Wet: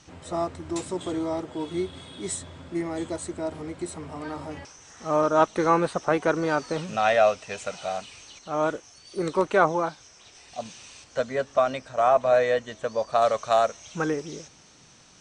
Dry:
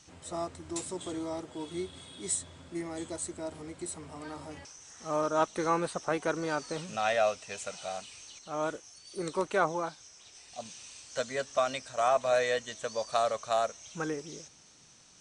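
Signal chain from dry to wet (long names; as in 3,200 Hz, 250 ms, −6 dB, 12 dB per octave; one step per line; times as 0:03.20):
low-pass filter 2,800 Hz 6 dB per octave, from 0:11.04 1,200 Hz, from 0:13.22 3,600 Hz
level +8 dB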